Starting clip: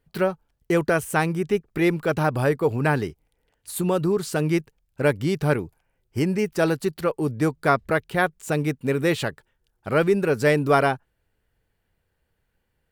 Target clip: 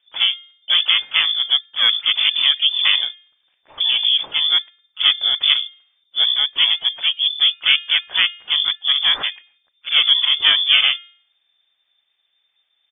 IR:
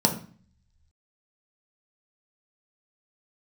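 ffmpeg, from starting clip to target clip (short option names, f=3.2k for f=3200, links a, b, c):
-filter_complex "[0:a]asplit=3[a][b][c];[b]asetrate=29433,aresample=44100,atempo=1.49831,volume=0dB[d];[c]asetrate=66075,aresample=44100,atempo=0.66742,volume=-12dB[e];[a][d][e]amix=inputs=3:normalize=0,bandreject=f=371.4:t=h:w=4,bandreject=f=742.8:t=h:w=4,bandreject=f=1.1142k:t=h:w=4,bandreject=f=1.4856k:t=h:w=4,bandreject=f=1.857k:t=h:w=4,bandreject=f=2.2284k:t=h:w=4,lowpass=f=3.1k:t=q:w=0.5098,lowpass=f=3.1k:t=q:w=0.6013,lowpass=f=3.1k:t=q:w=0.9,lowpass=f=3.1k:t=q:w=2.563,afreqshift=-3600,volume=1.5dB"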